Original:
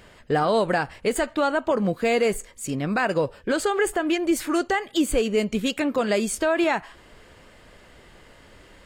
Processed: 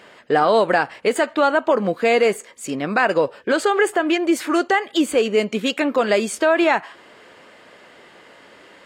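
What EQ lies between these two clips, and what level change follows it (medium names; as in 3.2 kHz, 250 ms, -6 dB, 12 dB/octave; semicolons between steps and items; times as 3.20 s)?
high-pass 230 Hz 12 dB/octave; bass shelf 400 Hz -4 dB; treble shelf 6.2 kHz -11 dB; +7.0 dB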